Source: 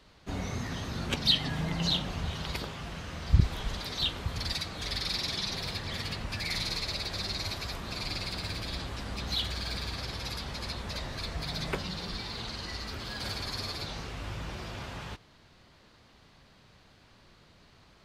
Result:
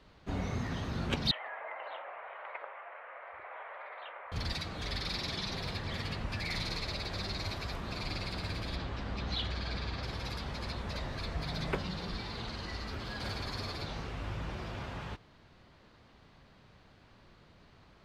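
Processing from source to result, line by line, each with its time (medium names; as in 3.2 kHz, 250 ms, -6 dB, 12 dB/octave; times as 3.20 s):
1.31–4.32 s: elliptic band-pass 560–2200 Hz, stop band 50 dB
8.76–10.03 s: low-pass 5.8 kHz
whole clip: treble shelf 4.2 kHz -11.5 dB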